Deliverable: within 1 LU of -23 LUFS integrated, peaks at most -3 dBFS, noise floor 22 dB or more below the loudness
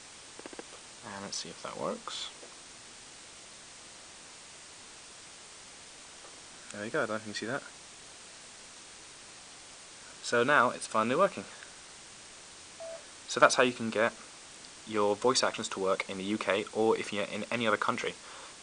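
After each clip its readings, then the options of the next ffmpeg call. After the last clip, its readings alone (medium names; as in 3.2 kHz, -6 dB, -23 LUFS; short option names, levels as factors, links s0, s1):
noise floor -51 dBFS; noise floor target -53 dBFS; loudness -30.5 LUFS; peak level -7.0 dBFS; loudness target -23.0 LUFS
-> -af "afftdn=nr=6:nf=-51"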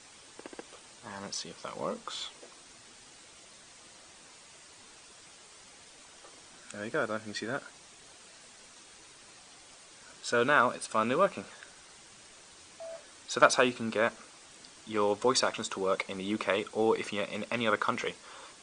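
noise floor -55 dBFS; loudness -30.5 LUFS; peak level -7.0 dBFS; loudness target -23.0 LUFS
-> -af "volume=2.37,alimiter=limit=0.708:level=0:latency=1"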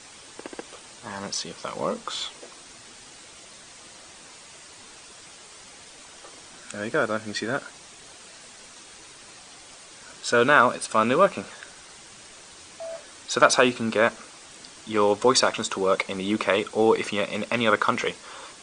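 loudness -23.5 LUFS; peak level -3.0 dBFS; noise floor -47 dBFS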